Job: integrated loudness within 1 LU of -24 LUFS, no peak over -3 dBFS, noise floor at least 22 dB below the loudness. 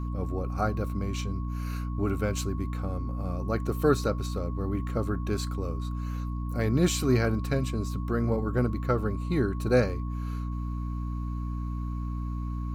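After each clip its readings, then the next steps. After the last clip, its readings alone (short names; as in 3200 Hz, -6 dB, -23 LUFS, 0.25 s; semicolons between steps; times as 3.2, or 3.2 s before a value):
hum 60 Hz; harmonics up to 300 Hz; hum level -30 dBFS; steady tone 1100 Hz; tone level -45 dBFS; loudness -30.0 LUFS; peak -10.5 dBFS; loudness target -24.0 LUFS
-> de-hum 60 Hz, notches 5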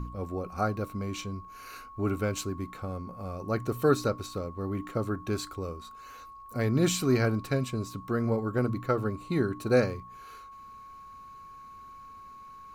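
hum none; steady tone 1100 Hz; tone level -45 dBFS
-> notch 1100 Hz, Q 30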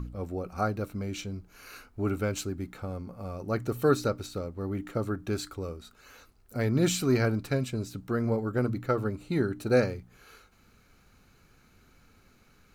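steady tone none; loudness -30.5 LUFS; peak -11.0 dBFS; loudness target -24.0 LUFS
-> gain +6.5 dB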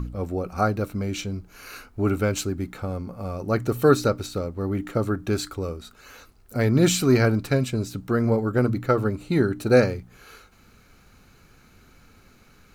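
loudness -24.0 LUFS; peak -4.5 dBFS; noise floor -55 dBFS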